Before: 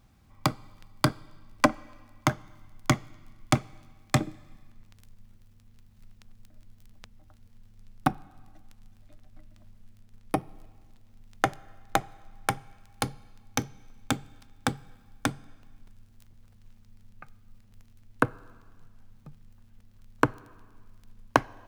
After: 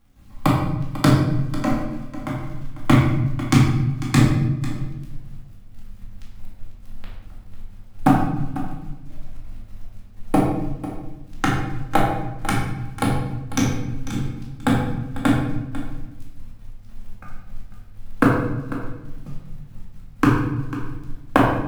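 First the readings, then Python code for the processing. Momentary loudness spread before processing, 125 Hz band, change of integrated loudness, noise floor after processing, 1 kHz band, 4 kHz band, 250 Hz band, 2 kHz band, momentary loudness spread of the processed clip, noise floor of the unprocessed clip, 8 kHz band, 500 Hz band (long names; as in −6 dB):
12 LU, +14.5 dB, +8.5 dB, −41 dBFS, +6.5 dB, +4.5 dB, +13.5 dB, +5.5 dB, 20 LU, −57 dBFS, +3.5 dB, +7.5 dB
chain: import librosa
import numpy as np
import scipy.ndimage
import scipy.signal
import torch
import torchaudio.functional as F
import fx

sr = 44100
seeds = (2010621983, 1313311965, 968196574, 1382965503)

p1 = fx.low_shelf(x, sr, hz=410.0, db=6.5)
p2 = np.clip(p1, -10.0 ** (-13.5 / 20.0), 10.0 ** (-13.5 / 20.0))
p3 = p1 + (p2 * librosa.db_to_amplitude(-6.0))
p4 = fx.step_gate(p3, sr, bpm=189, pattern='..xxxx.xx.xx.x', floor_db=-12.0, edge_ms=4.5)
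p5 = fx.filter_lfo_notch(p4, sr, shape='square', hz=6.7, low_hz=610.0, high_hz=5800.0, q=0.92)
p6 = fx.quant_companded(p5, sr, bits=6)
p7 = p6 + fx.echo_single(p6, sr, ms=496, db=-14.5, dry=0)
p8 = fx.room_shoebox(p7, sr, seeds[0], volume_m3=420.0, walls='mixed', distance_m=2.2)
p9 = fx.doppler_dist(p8, sr, depth_ms=0.19)
y = p9 * librosa.db_to_amplitude(-1.5)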